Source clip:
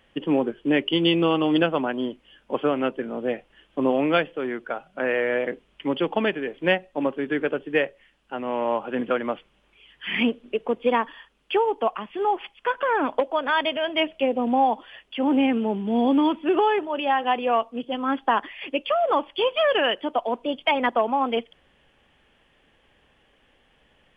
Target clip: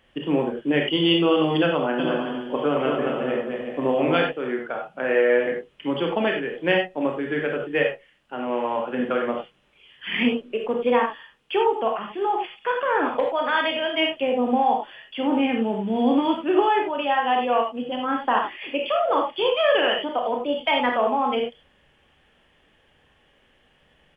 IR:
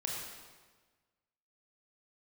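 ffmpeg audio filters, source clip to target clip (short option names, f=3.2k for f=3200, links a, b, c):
-filter_complex "[0:a]asplit=3[a][b][c];[a]afade=t=out:st=1.98:d=0.02[d];[b]aecho=1:1:220|363|456|516.4|555.6:0.631|0.398|0.251|0.158|0.1,afade=t=in:st=1.98:d=0.02,afade=t=out:st=4.21:d=0.02[e];[c]afade=t=in:st=4.21:d=0.02[f];[d][e][f]amix=inputs=3:normalize=0[g];[1:a]atrim=start_sample=2205,afade=t=out:st=0.15:d=0.01,atrim=end_sample=7056[h];[g][h]afir=irnorm=-1:irlink=0"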